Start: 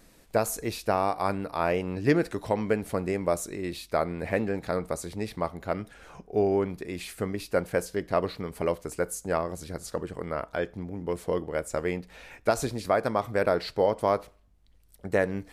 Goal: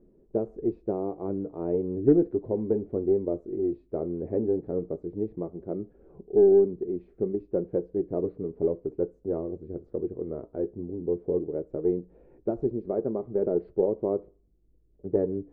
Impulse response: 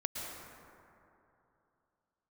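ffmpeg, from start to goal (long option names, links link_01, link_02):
-af "flanger=delay=5:depth=3.4:regen=-57:speed=0.15:shape=sinusoidal,lowpass=frequency=380:width_type=q:width=3.9,aeval=exprs='0.376*(cos(1*acos(clip(val(0)/0.376,-1,1)))-cos(1*PI/2))+0.00668*(cos(4*acos(clip(val(0)/0.376,-1,1)))-cos(4*PI/2))':channel_layout=same"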